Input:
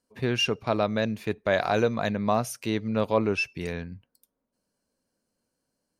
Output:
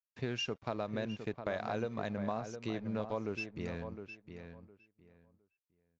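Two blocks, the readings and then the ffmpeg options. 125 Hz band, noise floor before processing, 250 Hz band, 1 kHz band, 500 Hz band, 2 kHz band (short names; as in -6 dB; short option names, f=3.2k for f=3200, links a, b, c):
-10.0 dB, -81 dBFS, -10.5 dB, -12.0 dB, -12.0 dB, -12.5 dB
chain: -filter_complex "[0:a]agate=range=-33dB:threshold=-51dB:ratio=3:detection=peak,acompressor=threshold=-26dB:ratio=6,aeval=exprs='sgn(val(0))*max(abs(val(0))-0.00335,0)':c=same,asplit=2[a][b];[b]adelay=710,lowpass=f=2.3k:p=1,volume=-8.5dB,asplit=2[c][d];[d]adelay=710,lowpass=f=2.3k:p=1,volume=0.2,asplit=2[e][f];[f]adelay=710,lowpass=f=2.3k:p=1,volume=0.2[g];[a][c][e][g]amix=inputs=4:normalize=0,aresample=16000,aresample=44100,adynamicequalizer=threshold=0.00501:dfrequency=1800:dqfactor=0.7:tfrequency=1800:tqfactor=0.7:attack=5:release=100:ratio=0.375:range=2:mode=cutabove:tftype=highshelf,volume=-6dB"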